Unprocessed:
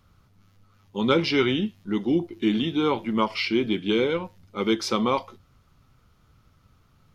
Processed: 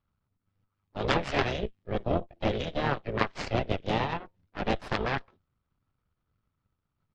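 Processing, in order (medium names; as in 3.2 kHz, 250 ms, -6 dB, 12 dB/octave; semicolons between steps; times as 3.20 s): harmony voices -5 st -10 dB, +4 st -15 dB, +7 st -18 dB; in parallel at 0 dB: compression, threshold -32 dBFS, peak gain reduction 15.5 dB; on the sum: Chebyshev shaper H 3 -10 dB, 6 -17 dB, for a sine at -4.5 dBFS; distance through air 170 m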